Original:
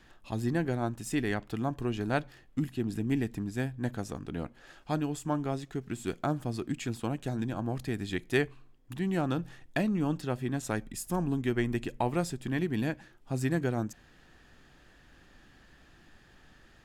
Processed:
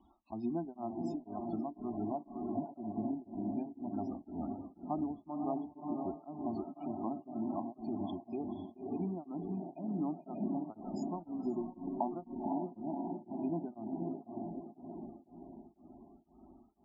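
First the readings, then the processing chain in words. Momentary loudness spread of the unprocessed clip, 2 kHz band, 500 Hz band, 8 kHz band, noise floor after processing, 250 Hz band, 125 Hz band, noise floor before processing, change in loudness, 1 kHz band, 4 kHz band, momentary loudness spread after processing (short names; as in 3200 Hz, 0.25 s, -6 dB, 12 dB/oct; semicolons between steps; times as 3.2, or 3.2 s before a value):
7 LU, under -35 dB, -7.0 dB, under -25 dB, -67 dBFS, -4.5 dB, -14.0 dB, -59 dBFS, -7.0 dB, -3.5 dB, under -20 dB, 8 LU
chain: air absorption 68 m; fixed phaser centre 480 Hz, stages 6; treble ducked by the level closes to 1100 Hz, closed at -29 dBFS; HPF 57 Hz 12 dB/oct; diffused feedback echo 0.536 s, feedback 55%, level -4 dB; compressor 6:1, threshold -31 dBFS, peak gain reduction 6.5 dB; loudest bins only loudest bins 32; dynamic EQ 690 Hz, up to +5 dB, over -54 dBFS, Q 6.1; beating tremolo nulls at 2 Hz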